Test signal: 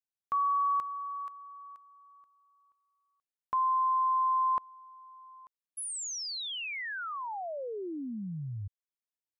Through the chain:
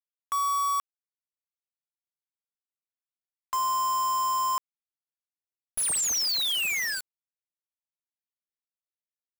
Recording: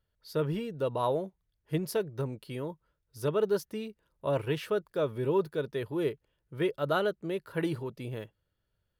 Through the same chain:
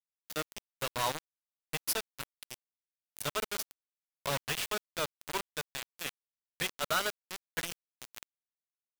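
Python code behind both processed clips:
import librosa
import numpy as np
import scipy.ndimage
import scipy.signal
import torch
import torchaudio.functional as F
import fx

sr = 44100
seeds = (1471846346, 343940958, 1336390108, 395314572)

p1 = fx.tone_stack(x, sr, knobs='10-0-10')
p2 = fx.schmitt(p1, sr, flips_db=-49.0)
p3 = p1 + F.gain(torch.from_numpy(p2), -9.5).numpy()
y = fx.quant_companded(p3, sr, bits=2)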